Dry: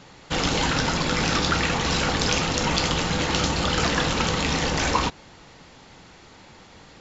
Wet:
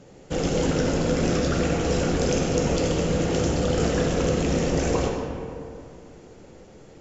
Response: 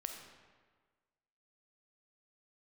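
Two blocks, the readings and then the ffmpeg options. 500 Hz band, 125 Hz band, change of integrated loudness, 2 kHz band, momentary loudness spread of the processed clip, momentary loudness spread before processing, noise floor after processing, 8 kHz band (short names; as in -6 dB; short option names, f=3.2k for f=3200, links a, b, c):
+5.5 dB, +2.0 dB, -1.0 dB, -8.5 dB, 9 LU, 2 LU, -48 dBFS, n/a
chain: -filter_complex "[0:a]equalizer=f=500:t=o:w=1:g=7,equalizer=f=1k:t=o:w=1:g=-11,equalizer=f=2k:t=o:w=1:g=-6,equalizer=f=4k:t=o:w=1:g=-12[a];[1:a]atrim=start_sample=2205,asetrate=25137,aresample=44100[b];[a][b]afir=irnorm=-1:irlink=0"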